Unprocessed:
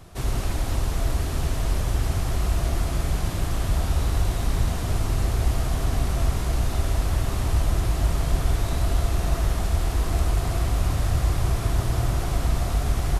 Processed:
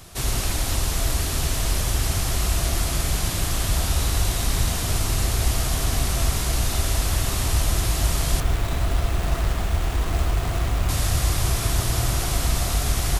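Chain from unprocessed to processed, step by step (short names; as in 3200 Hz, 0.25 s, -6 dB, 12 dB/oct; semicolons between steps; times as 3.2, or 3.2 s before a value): 8.4–10.89 median filter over 9 samples; high shelf 2100 Hz +12 dB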